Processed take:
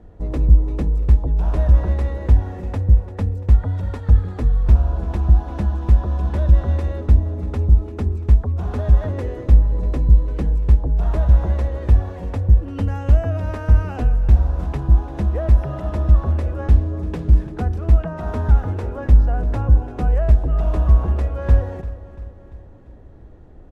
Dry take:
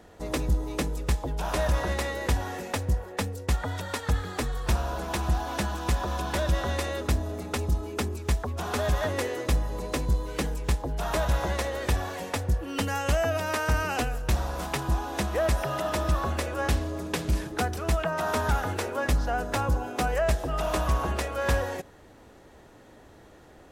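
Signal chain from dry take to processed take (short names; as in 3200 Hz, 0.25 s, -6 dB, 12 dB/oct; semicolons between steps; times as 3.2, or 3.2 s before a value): tilt -4.5 dB/oct; on a send: feedback echo 0.343 s, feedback 53%, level -15.5 dB; on the sum: gain -4.5 dB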